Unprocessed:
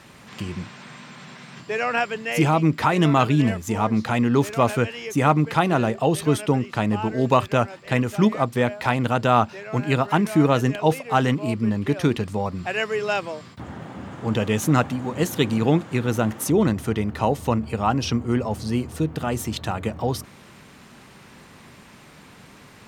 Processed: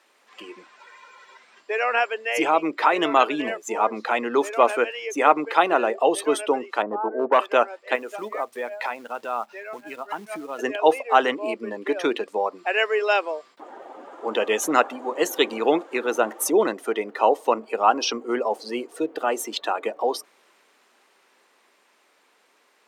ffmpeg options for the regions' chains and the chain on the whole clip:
-filter_complex "[0:a]asettb=1/sr,asplit=3[a][b][c];[a]atrim=end=0.794[d];[b]atrim=start=0.79:end=1.39,asetpts=PTS-STARTPTS,afade=t=in:d=0.004:c=qsin,afade=t=out:st=0.596:d=0.004:c=qsin,highshelf=f=7.9k:g=3,aecho=1:1:2.1:0.51,atrim=end_sample=26460[e];[c]atrim=start=1.386[f];[d][e]acrossfade=d=0.004:c1=hsin:c2=qsin[g];[g][f]acrossfade=d=0.004:c1=qsin:c2=hsin,asettb=1/sr,asplit=3[h][i][j];[h]atrim=end=6.824[k];[i]atrim=start=6.82:end=7.39,asetpts=PTS-STARTPTS,afade=t=in:d=0.004:c=qsin,afade=t=out:st=0.566:d=0.004:c=qsin,lowpass=f=1.4k:w=0.5412,lowpass=f=1.4k:w=1.3066,volume=13.5dB,asoftclip=hard,volume=-13.5dB[l];[j]atrim=start=7.386[m];[k][l]acrossfade=d=0.004:c1=hsin:c2=qsin[n];[n][m]acrossfade=d=0.004:c1=qsin:c2=hsin,asettb=1/sr,asplit=3[o][p][q];[o]atrim=end=7.954[r];[p]atrim=start=7.95:end=10.59,asetpts=PTS-STARTPTS,afade=t=in:d=0.004:c=qsin,afade=t=out:st=2.636:d=0.004:c=qsin,asubboost=boost=11.5:cutoff=150,acompressor=threshold=-25dB:ratio=4:attack=3.2:release=140:knee=1:detection=peak,acrusher=bits=5:mode=log:mix=0:aa=0.000001[s];[q]atrim=start=10.586[t];[r][s]acrossfade=d=0.004:c1=hsin:c2=qsin[u];[u][t]acrossfade=d=0.004:c1=qsin:c2=hsin,highpass=f=370:w=0.5412,highpass=f=370:w=1.3066,afftdn=nr=13:nf=-36,dynaudnorm=f=270:g=21:m=4.5dB,volume=1dB"

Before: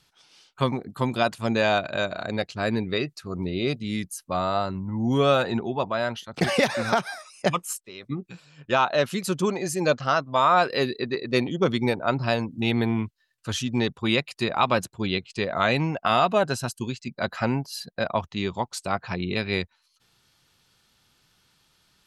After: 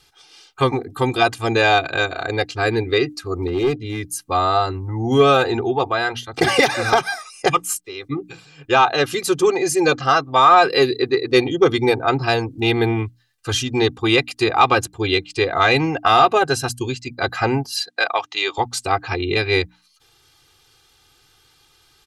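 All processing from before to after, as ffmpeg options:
-filter_complex "[0:a]asettb=1/sr,asplit=3[a][b][c];[a]atrim=end=3.474[d];[b]atrim=start=3.47:end=4.04,asetpts=PTS-STARTPTS,afade=t=in:d=0.004:c=qsin,afade=t=out:st=0.566:d=0.004:c=qsin,lowpass=f=1.6k:p=1,asoftclip=type=hard:threshold=-21.5dB[e];[c]atrim=start=4.036[f];[d][e]acrossfade=d=0.004:c1=hsin:c2=qsin[g];[g][f]acrossfade=d=0.004:c1=qsin:c2=hsin,asettb=1/sr,asplit=3[h][i][j];[h]atrim=end=17.764[k];[i]atrim=start=17.76:end=18.58,asetpts=PTS-STARTPTS,afade=t=in:d=0.004:c=qsin,afade=t=out:st=0.816:d=0.004:c=qsin,highpass=430,lowpass=7.7k,tiltshelf=f=790:g=-5.5[l];[j]atrim=start=18.576[m];[k][l]acrossfade=d=0.004:c1=hsin:c2=qsin[n];[n][m]acrossfade=d=0.004:c1=qsin:c2=hsin,aecho=1:1:2.5:0.94,acontrast=35,bandreject=f=60:t=h:w=6,bandreject=f=120:t=h:w=6,bandreject=f=180:t=h:w=6,bandreject=f=240:t=h:w=6,bandreject=f=300:t=h:w=6"

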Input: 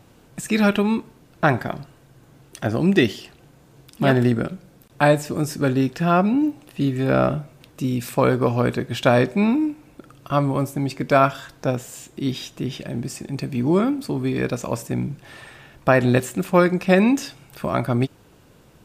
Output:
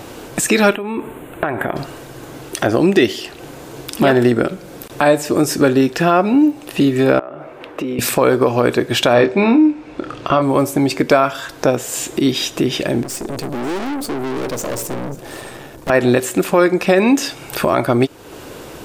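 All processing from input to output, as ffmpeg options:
-filter_complex "[0:a]asettb=1/sr,asplit=3[a][b][c];[a]atrim=end=0.754[d];[b]atrim=start=0.75:end=1.76,asetpts=PTS-STARTPTS,afade=t=in:d=0.004:c=qsin,afade=t=out:st=1.006:d=0.004:c=qsin,acompressor=threshold=-28dB:ratio=16:attack=3.2:release=140:knee=1:detection=peak,asuperstop=centerf=5200:order=4:qfactor=0.96[e];[c]atrim=start=1.756[f];[d][e]acrossfade=d=0.004:c1=hsin:c2=qsin[g];[g][f]acrossfade=d=0.004:c1=qsin:c2=hsin,asettb=1/sr,asplit=3[h][i][j];[h]atrim=end=7.194[k];[i]atrim=start=7.19:end=7.99,asetpts=PTS-STARTPTS,afade=t=in:d=0.004:c=qsin,afade=t=out:st=0.796:d=0.004:c=qsin,acrossover=split=300 2600:gain=0.2 1 0.0794[l][m][n];[l][m][n]amix=inputs=3:normalize=0,acompressor=threshold=-36dB:ratio=6:attack=3.2:release=140:knee=1:detection=peak[o];[j]atrim=start=7.986[p];[k][o]acrossfade=d=0.004:c1=hsin:c2=qsin[q];[q][p]acrossfade=d=0.004:c1=qsin:c2=hsin,asettb=1/sr,asplit=3[r][s][t];[r]atrim=end=9.134[u];[s]atrim=start=9.13:end=10.42,asetpts=PTS-STARTPTS,afade=t=in:d=0.004:c=qsin,afade=t=out:st=1.286:d=0.004:c=qsin,lowpass=4.4k,asplit=2[v][w];[w]adelay=26,volume=-8dB[x];[v][x]amix=inputs=2:normalize=0,atrim=end_sample=56889[y];[t]atrim=start=10.416[z];[u][y]acrossfade=d=0.004:c1=hsin:c2=qsin[aa];[aa][z]acrossfade=d=0.004:c1=qsin:c2=hsin,asettb=1/sr,asplit=3[ab][ac][ad];[ab]atrim=end=13.034[ae];[ac]atrim=start=13.03:end=15.9,asetpts=PTS-STARTPTS,afade=t=in:d=0.004:c=qsin,afade=t=out:st=2.866:d=0.004:c=qsin,equalizer=f=2.2k:t=o:w=2.3:g=-11.5,aeval=exprs='(tanh(79.4*val(0)+0.7)-tanh(0.7))/79.4':c=same,aecho=1:1:542:0.1,atrim=end_sample=126567[af];[ad]atrim=start=15.896[ag];[ae][af]acrossfade=d=0.004:c1=hsin:c2=qsin[ah];[ah][ag]acrossfade=d=0.004:c1=qsin:c2=hsin,lowshelf=f=250:t=q:w=1.5:g=-7,acompressor=threshold=-40dB:ratio=2,alimiter=level_in=21dB:limit=-1dB:release=50:level=0:latency=1,volume=-1dB"

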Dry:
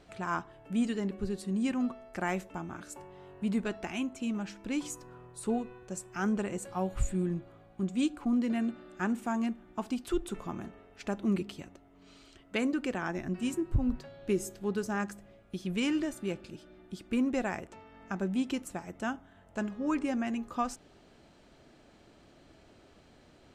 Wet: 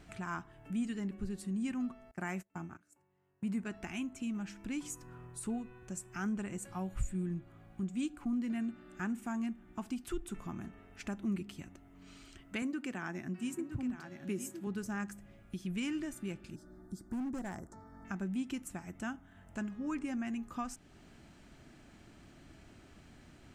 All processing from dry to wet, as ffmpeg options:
-filter_complex "[0:a]asettb=1/sr,asplit=3[a][b][c];[a]atrim=end=2.114[d];[b]atrim=start=2.11:end=3.74,asetpts=PTS-STARTPTS,afade=t=in:d=0.004:c=qsin,afade=t=out:st=1.626:d=0.004:c=qsin,agate=range=-25dB:threshold=-41dB:ratio=16:release=100:detection=peak,highpass=74,equalizer=f=3.5k:w=3.7:g=-6.5[e];[c]atrim=start=3.736[f];[d][e]acrossfade=d=0.004:c1=hsin:c2=qsin[g];[g][f]acrossfade=d=0.004:c1=qsin:c2=hsin,asettb=1/sr,asplit=3[h][i][j];[h]atrim=end=12.624[k];[i]atrim=start=12.62:end=14.67,asetpts=PTS-STARTPTS,afade=t=in:d=0.004:c=qsin,afade=t=out:st=2.046:d=0.004:c=qsin,highpass=150,aecho=1:1:965:0.316,atrim=end_sample=90405[l];[j]atrim=start=14.666[m];[k][l]acrossfade=d=0.004:c1=hsin:c2=qsin[n];[n][m]acrossfade=d=0.004:c1=qsin:c2=hsin,asettb=1/sr,asplit=3[o][p][q];[o]atrim=end=16.554[r];[p]atrim=start=16.55:end=18.05,asetpts=PTS-STARTPTS,afade=t=in:d=0.004:c=qsin,afade=t=out:st=1.496:d=0.004:c=qsin,asuperstop=centerf=2700:order=4:qfactor=0.8,asoftclip=type=hard:threshold=-29.5dB[s];[q]atrim=start=18.046[t];[r][s]acrossfade=d=0.004:c1=hsin:c2=qsin[u];[u][t]acrossfade=d=0.004:c1=qsin:c2=hsin,equalizer=f=500:t=o:w=1:g=-11,equalizer=f=1k:t=o:w=1:g=-4,equalizer=f=4k:t=o:w=1:g=-7,acompressor=threshold=-53dB:ratio=1.5,volume=5dB"

